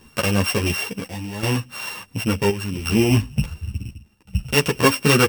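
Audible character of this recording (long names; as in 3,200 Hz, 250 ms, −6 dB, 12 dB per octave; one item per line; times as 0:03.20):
a buzz of ramps at a fixed pitch in blocks of 16 samples
chopped level 0.7 Hz, depth 65%, duty 75%
a shimmering, thickened sound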